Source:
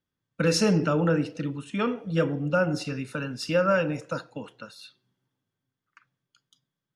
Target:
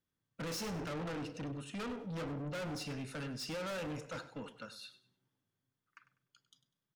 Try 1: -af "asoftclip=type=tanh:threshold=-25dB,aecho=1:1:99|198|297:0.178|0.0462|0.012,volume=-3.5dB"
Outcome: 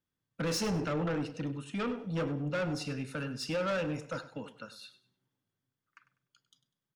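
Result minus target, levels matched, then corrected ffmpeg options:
soft clip: distortion -5 dB
-af "asoftclip=type=tanh:threshold=-35dB,aecho=1:1:99|198|297:0.178|0.0462|0.012,volume=-3.5dB"

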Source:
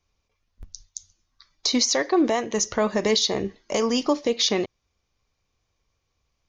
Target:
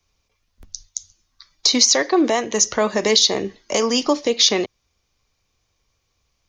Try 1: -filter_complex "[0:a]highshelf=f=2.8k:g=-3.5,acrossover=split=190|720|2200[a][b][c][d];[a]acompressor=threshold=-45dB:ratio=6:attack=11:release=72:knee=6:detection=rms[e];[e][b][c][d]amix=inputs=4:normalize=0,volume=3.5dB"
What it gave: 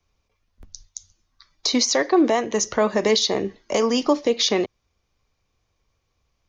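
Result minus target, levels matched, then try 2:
4000 Hz band -2.5 dB
-filter_complex "[0:a]highshelf=f=2.8k:g=5.5,acrossover=split=190|720|2200[a][b][c][d];[a]acompressor=threshold=-45dB:ratio=6:attack=11:release=72:knee=6:detection=rms[e];[e][b][c][d]amix=inputs=4:normalize=0,volume=3.5dB"

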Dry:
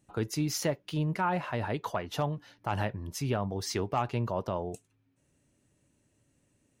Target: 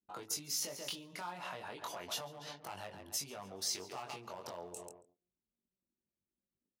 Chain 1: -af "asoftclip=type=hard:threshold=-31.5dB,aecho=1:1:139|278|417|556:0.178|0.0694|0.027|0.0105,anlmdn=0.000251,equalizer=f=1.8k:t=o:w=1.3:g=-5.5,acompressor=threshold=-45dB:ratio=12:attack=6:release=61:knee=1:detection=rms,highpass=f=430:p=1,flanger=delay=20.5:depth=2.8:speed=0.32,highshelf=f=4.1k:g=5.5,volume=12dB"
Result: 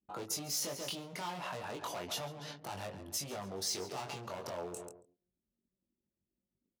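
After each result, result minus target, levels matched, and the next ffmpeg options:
hard clip: distortion +13 dB; 500 Hz band +3.0 dB
-af "asoftclip=type=hard:threshold=-22.5dB,aecho=1:1:139|278|417|556:0.178|0.0694|0.027|0.0105,anlmdn=0.000251,equalizer=f=1.8k:t=o:w=1.3:g=-5.5,acompressor=threshold=-45dB:ratio=12:attack=6:release=61:knee=1:detection=rms,highpass=f=430:p=1,flanger=delay=20.5:depth=2.8:speed=0.32,highshelf=f=4.1k:g=5.5,volume=12dB"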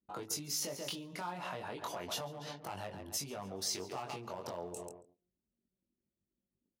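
500 Hz band +3.0 dB
-af "asoftclip=type=hard:threshold=-22.5dB,aecho=1:1:139|278|417|556:0.178|0.0694|0.027|0.0105,anlmdn=0.000251,equalizer=f=1.8k:t=o:w=1.3:g=-5.5,acompressor=threshold=-45dB:ratio=12:attack=6:release=61:knee=1:detection=rms,highpass=f=1k:p=1,flanger=delay=20.5:depth=2.8:speed=0.32,highshelf=f=4.1k:g=5.5,volume=12dB"

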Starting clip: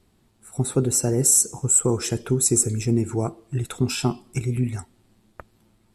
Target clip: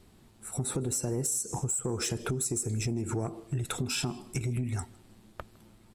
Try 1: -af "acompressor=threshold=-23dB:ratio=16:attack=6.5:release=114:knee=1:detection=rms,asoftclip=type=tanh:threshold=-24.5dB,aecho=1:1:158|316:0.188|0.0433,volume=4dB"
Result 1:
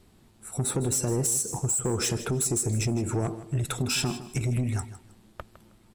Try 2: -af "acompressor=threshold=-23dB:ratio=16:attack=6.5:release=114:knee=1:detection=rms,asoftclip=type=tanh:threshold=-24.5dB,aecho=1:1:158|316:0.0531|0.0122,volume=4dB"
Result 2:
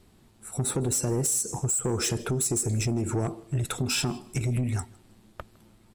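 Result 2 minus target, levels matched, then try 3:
compressor: peak gain reduction -6.5 dB
-af "acompressor=threshold=-30dB:ratio=16:attack=6.5:release=114:knee=1:detection=rms,asoftclip=type=tanh:threshold=-24.5dB,aecho=1:1:158|316:0.0531|0.0122,volume=4dB"

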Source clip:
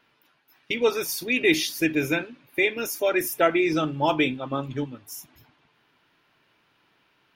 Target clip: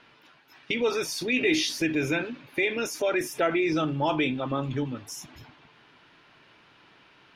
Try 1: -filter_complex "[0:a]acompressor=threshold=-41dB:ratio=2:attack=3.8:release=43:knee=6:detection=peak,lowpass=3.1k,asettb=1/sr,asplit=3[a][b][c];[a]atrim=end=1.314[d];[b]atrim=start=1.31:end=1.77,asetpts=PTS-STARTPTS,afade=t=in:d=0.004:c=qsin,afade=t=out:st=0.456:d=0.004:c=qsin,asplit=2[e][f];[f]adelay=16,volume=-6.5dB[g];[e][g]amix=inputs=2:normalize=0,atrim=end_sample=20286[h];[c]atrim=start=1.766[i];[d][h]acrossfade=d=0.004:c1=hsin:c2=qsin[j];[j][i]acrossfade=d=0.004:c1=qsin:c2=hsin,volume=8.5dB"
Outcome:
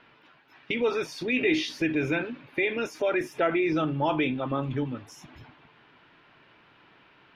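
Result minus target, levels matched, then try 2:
8000 Hz band -10.5 dB
-filter_complex "[0:a]acompressor=threshold=-41dB:ratio=2:attack=3.8:release=43:knee=6:detection=peak,lowpass=6.8k,asettb=1/sr,asplit=3[a][b][c];[a]atrim=end=1.314[d];[b]atrim=start=1.31:end=1.77,asetpts=PTS-STARTPTS,afade=t=in:d=0.004:c=qsin,afade=t=out:st=0.456:d=0.004:c=qsin,asplit=2[e][f];[f]adelay=16,volume=-6.5dB[g];[e][g]amix=inputs=2:normalize=0,atrim=end_sample=20286[h];[c]atrim=start=1.766[i];[d][h]acrossfade=d=0.004:c1=hsin:c2=qsin[j];[j][i]acrossfade=d=0.004:c1=qsin:c2=hsin,volume=8.5dB"

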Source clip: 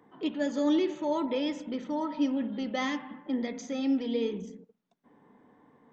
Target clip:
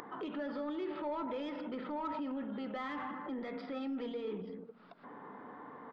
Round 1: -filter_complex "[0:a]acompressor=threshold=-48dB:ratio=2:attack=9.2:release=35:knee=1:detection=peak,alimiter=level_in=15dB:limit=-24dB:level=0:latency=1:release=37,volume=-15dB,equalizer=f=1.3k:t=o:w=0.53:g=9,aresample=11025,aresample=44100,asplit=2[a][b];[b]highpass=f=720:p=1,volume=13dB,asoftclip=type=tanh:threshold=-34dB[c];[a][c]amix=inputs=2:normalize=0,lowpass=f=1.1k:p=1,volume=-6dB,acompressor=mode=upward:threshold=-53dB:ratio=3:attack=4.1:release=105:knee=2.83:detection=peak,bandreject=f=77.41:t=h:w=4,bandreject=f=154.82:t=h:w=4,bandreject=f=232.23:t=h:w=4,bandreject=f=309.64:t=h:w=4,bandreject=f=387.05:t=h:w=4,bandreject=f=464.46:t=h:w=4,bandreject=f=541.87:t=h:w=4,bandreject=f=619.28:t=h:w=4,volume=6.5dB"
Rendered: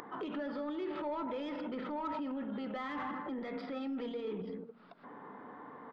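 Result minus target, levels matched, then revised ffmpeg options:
compressor: peak gain reduction -4 dB
-filter_complex "[0:a]acompressor=threshold=-55.5dB:ratio=2:attack=9.2:release=35:knee=1:detection=peak,alimiter=level_in=15dB:limit=-24dB:level=0:latency=1:release=37,volume=-15dB,equalizer=f=1.3k:t=o:w=0.53:g=9,aresample=11025,aresample=44100,asplit=2[a][b];[b]highpass=f=720:p=1,volume=13dB,asoftclip=type=tanh:threshold=-34dB[c];[a][c]amix=inputs=2:normalize=0,lowpass=f=1.1k:p=1,volume=-6dB,acompressor=mode=upward:threshold=-53dB:ratio=3:attack=4.1:release=105:knee=2.83:detection=peak,bandreject=f=77.41:t=h:w=4,bandreject=f=154.82:t=h:w=4,bandreject=f=232.23:t=h:w=4,bandreject=f=309.64:t=h:w=4,bandreject=f=387.05:t=h:w=4,bandreject=f=464.46:t=h:w=4,bandreject=f=541.87:t=h:w=4,bandreject=f=619.28:t=h:w=4,volume=6.5dB"

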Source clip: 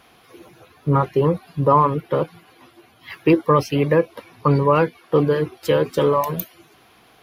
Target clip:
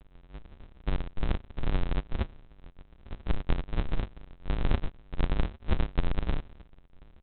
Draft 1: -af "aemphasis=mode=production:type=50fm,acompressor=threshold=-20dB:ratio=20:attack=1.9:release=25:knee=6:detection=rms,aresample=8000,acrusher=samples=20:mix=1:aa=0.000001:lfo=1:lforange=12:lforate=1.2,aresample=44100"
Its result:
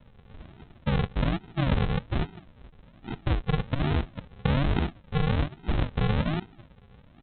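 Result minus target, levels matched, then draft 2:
decimation with a swept rate: distortion -13 dB
-af "aemphasis=mode=production:type=50fm,acompressor=threshold=-20dB:ratio=20:attack=1.9:release=25:knee=6:detection=rms,aresample=8000,acrusher=samples=71:mix=1:aa=0.000001:lfo=1:lforange=42.6:lforate=1.2,aresample=44100"

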